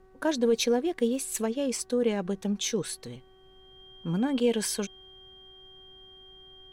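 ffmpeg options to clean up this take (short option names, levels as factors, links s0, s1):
-af "bandreject=f=377.4:t=h:w=4,bandreject=f=754.8:t=h:w=4,bandreject=f=1132.2:t=h:w=4,bandreject=f=1509.6:t=h:w=4,bandreject=f=1887:t=h:w=4,bandreject=f=3200:w=30,agate=range=0.0891:threshold=0.00501"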